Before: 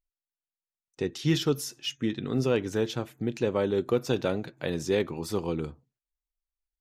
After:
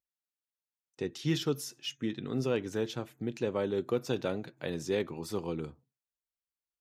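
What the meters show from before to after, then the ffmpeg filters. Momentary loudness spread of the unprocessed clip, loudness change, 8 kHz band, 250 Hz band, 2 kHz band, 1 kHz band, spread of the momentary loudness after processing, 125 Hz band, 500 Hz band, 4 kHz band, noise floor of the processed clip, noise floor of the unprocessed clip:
7 LU, -5.0 dB, -5.0 dB, -5.0 dB, -5.0 dB, -5.0 dB, 7 LU, -5.5 dB, -5.0 dB, -5.0 dB, under -85 dBFS, under -85 dBFS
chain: -af "highpass=85,volume=-5dB"

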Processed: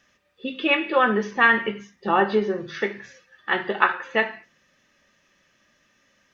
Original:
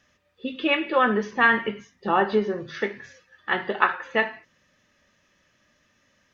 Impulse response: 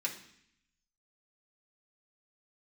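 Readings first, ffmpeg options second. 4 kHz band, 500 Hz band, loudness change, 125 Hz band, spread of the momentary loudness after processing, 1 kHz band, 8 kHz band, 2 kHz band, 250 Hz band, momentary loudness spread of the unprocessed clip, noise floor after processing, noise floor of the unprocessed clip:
+1.5 dB, +1.0 dB, +1.5 dB, +1.0 dB, 15 LU, +1.0 dB, n/a, +2.0 dB, +0.5 dB, 15 LU, -65 dBFS, -67 dBFS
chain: -filter_complex "[0:a]equalizer=f=87:t=o:w=0.77:g=-6.5,asplit=2[a][b];[1:a]atrim=start_sample=2205,atrim=end_sample=6174[c];[b][c]afir=irnorm=-1:irlink=0,volume=-11dB[d];[a][d]amix=inputs=2:normalize=0"

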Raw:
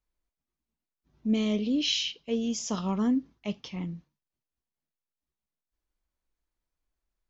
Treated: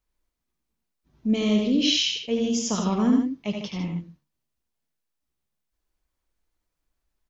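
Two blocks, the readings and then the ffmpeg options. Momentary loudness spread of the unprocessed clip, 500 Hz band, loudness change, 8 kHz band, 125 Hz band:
11 LU, +6.0 dB, +5.5 dB, n/a, +5.5 dB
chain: -af "aecho=1:1:76|89|151:0.447|0.473|0.376,volume=4dB"

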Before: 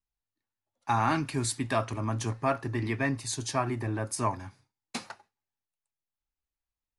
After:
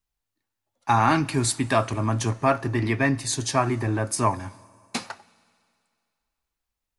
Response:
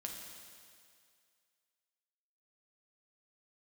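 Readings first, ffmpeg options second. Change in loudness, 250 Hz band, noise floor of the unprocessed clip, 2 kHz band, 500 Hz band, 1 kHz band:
+6.5 dB, +7.0 dB, under -85 dBFS, +7.0 dB, +6.5 dB, +7.0 dB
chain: -filter_complex "[0:a]asplit=2[a][b];[1:a]atrim=start_sample=2205,asetrate=41013,aresample=44100[c];[b][c]afir=irnorm=-1:irlink=0,volume=-16.5dB[d];[a][d]amix=inputs=2:normalize=0,volume=6dB"

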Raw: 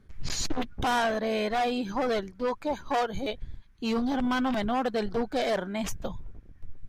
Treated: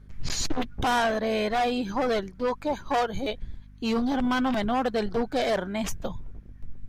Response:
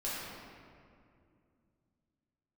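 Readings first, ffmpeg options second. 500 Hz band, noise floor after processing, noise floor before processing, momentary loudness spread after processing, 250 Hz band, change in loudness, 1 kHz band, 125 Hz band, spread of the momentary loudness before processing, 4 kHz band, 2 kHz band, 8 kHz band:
+2.0 dB, -48 dBFS, -54 dBFS, 8 LU, +2.0 dB, +2.0 dB, +2.0 dB, +2.5 dB, 9 LU, +2.0 dB, +2.0 dB, +2.0 dB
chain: -af "aeval=exprs='val(0)+0.00316*(sin(2*PI*50*n/s)+sin(2*PI*2*50*n/s)/2+sin(2*PI*3*50*n/s)/3+sin(2*PI*4*50*n/s)/4+sin(2*PI*5*50*n/s)/5)':c=same,volume=2dB"

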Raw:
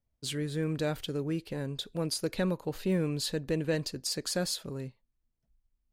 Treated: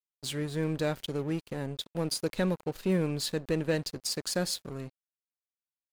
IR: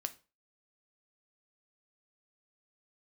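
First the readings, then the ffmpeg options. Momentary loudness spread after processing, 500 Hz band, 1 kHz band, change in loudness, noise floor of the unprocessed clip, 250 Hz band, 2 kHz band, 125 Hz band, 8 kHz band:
7 LU, +1.0 dB, +2.5 dB, +1.0 dB, -81 dBFS, +0.5 dB, +1.5 dB, +0.5 dB, +0.5 dB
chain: -filter_complex "[0:a]asplit=2[a][b];[1:a]atrim=start_sample=2205[c];[b][c]afir=irnorm=-1:irlink=0,volume=-10dB[d];[a][d]amix=inputs=2:normalize=0,aeval=exprs='sgn(val(0))*max(abs(val(0))-0.00668,0)':c=same"

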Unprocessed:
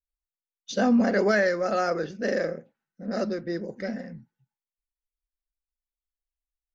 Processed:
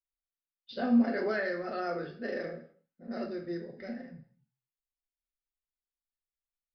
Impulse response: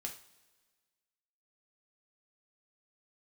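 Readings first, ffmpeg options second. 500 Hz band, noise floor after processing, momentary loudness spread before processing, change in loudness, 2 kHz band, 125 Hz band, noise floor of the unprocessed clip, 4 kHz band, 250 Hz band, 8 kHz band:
-9.5 dB, under -85 dBFS, 14 LU, -7.0 dB, -8.5 dB, -9.5 dB, under -85 dBFS, -9.5 dB, -4.5 dB, n/a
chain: -filter_complex "[1:a]atrim=start_sample=2205,afade=t=out:st=0.32:d=0.01,atrim=end_sample=14553[a];[0:a][a]afir=irnorm=-1:irlink=0,aresample=11025,aresample=44100,volume=-6.5dB"

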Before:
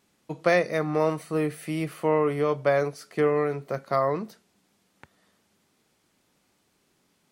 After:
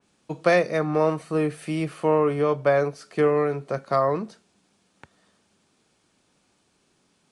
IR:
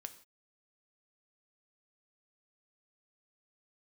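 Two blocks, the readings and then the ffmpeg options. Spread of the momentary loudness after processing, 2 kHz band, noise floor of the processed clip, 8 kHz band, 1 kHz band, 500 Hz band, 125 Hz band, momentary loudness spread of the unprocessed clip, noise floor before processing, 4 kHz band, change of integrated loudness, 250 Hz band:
8 LU, +1.0 dB, -68 dBFS, n/a, +2.5 dB, +2.5 dB, +2.5 dB, 8 LU, -70 dBFS, +1.5 dB, +2.5 dB, +2.5 dB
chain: -filter_complex "[0:a]acrossover=split=620|3100[a][b][c];[c]acrusher=bits=2:mode=log:mix=0:aa=0.000001[d];[a][b][d]amix=inputs=3:normalize=0,aresample=22050,aresample=44100,bandreject=f=2k:w=13,adynamicequalizer=threshold=0.00631:dfrequency=2900:dqfactor=0.7:tfrequency=2900:tqfactor=0.7:attack=5:release=100:ratio=0.375:range=3:mode=cutabove:tftype=highshelf,volume=2.5dB"

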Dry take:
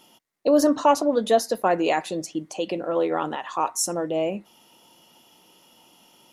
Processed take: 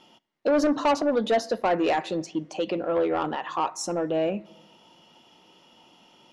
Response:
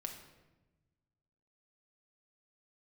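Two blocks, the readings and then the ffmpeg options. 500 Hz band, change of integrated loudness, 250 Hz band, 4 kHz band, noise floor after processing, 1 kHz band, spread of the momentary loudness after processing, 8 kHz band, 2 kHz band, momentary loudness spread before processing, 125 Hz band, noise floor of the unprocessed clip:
-2.0 dB, -2.5 dB, -2.0 dB, -2.0 dB, -58 dBFS, -3.0 dB, 8 LU, -9.0 dB, 0.0 dB, 11 LU, 0.0 dB, -58 dBFS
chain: -filter_complex "[0:a]lowpass=4.4k,asplit=2[a][b];[1:a]atrim=start_sample=2205[c];[b][c]afir=irnorm=-1:irlink=0,volume=-15dB[d];[a][d]amix=inputs=2:normalize=0,asoftclip=type=tanh:threshold=-16.5dB"

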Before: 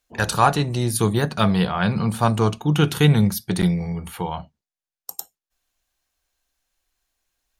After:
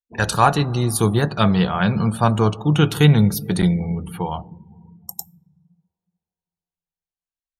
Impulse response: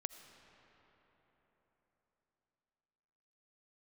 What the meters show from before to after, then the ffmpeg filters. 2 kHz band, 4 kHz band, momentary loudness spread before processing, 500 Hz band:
+1.5 dB, +1.0 dB, 17 LU, +1.5 dB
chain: -filter_complex "[0:a]asplit=2[a][b];[1:a]atrim=start_sample=2205,lowshelf=f=170:g=4.5[c];[b][c]afir=irnorm=-1:irlink=0,volume=-3.5dB[d];[a][d]amix=inputs=2:normalize=0,afftdn=nr=27:nf=-36,volume=-2dB"

